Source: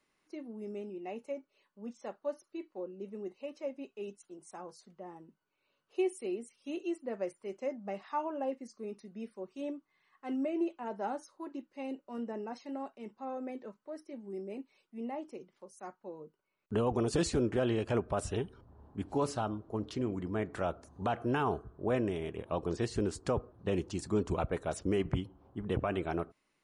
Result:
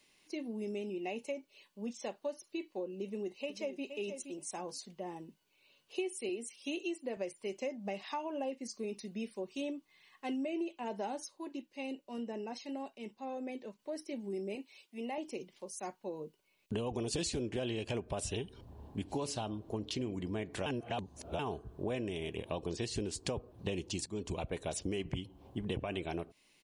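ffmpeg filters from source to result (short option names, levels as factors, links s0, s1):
-filter_complex "[0:a]asplit=2[s0][s1];[s1]afade=t=in:st=3.02:d=0.01,afade=t=out:st=3.84:d=0.01,aecho=0:1:470|940:0.266073|0.0266073[s2];[s0][s2]amix=inputs=2:normalize=0,asettb=1/sr,asplit=3[s3][s4][s5];[s3]atrim=end=6.294[s6];[s4]atrim=start=6.29:end=7.17,asetpts=PTS-STARTPTS,afade=t=in:d=0.004:c=qsin,afade=t=out:st=0.876:d=0.004:c=qsin,highpass=200[s7];[s5]atrim=start=7.166[s8];[s6][s7]acrossfade=d=0.004:c1=hsin:c2=qsin[s9];[s9][s8]acrossfade=d=0.004:c1=qsin:c2=hsin,asettb=1/sr,asplit=3[s10][s11][s12];[s10]atrim=end=14.554[s13];[s11]atrim=start=14.55:end=15.18,asetpts=PTS-STARTPTS,afade=t=in:d=0.004:c=qsin,afade=t=out:st=0.626:d=0.004:c=qsin,highpass=f=470:p=1[s14];[s12]atrim=start=15.176[s15];[s13][s14]acrossfade=d=0.004:c1=hsin:c2=qsin[s16];[s16][s15]acrossfade=d=0.004:c1=qsin:c2=hsin,asplit=6[s17][s18][s19][s20][s21][s22];[s17]atrim=end=11.282[s23];[s18]atrim=start=11.278:end=13.792,asetpts=PTS-STARTPTS,volume=0.531[s24];[s19]atrim=start=13.788:end=20.662[s25];[s20]atrim=start=20.658:end=21.392,asetpts=PTS-STARTPTS,areverse[s26];[s21]atrim=start=21.388:end=24.06,asetpts=PTS-STARTPTS,afade=t=out:st=2.668:d=0.004:c=hsin:silence=0.149624[s27];[s22]atrim=start=24.06,asetpts=PTS-STARTPTS,afade=t=in:d=0.57:silence=0.149624[s28];[s23][s24]acrossfade=d=0.004:c1=hsin:c2=hsin[s29];[s29][s25]acrossfade=d=0.004:c1=hsin:c2=hsin[s30];[s30][s26]acrossfade=d=0.004:c1=hsin:c2=hsin[s31];[s27][s28]concat=n=2:v=0:a=1[s32];[s31][s32]acrossfade=d=0.004:c1=hsin:c2=hsin,highshelf=f=2100:t=q:w=1.5:g=7,acompressor=threshold=0.00891:ratio=4,equalizer=f=1300:w=6.2:g=-9.5,volume=1.88"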